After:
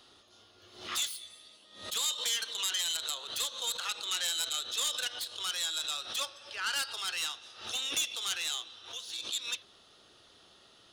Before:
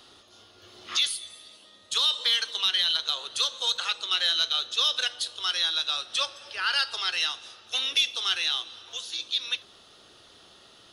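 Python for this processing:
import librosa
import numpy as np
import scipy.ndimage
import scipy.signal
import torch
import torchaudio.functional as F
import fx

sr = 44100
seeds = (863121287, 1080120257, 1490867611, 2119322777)

y = fx.self_delay(x, sr, depth_ms=0.085)
y = fx.pre_swell(y, sr, db_per_s=100.0)
y = y * 10.0 ** (-6.0 / 20.0)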